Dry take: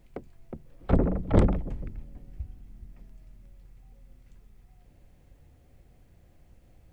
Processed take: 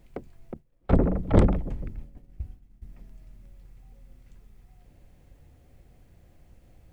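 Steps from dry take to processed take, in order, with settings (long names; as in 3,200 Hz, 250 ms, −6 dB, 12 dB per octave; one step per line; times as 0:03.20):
0:00.54–0:02.82: downward expander −37 dBFS
level +2 dB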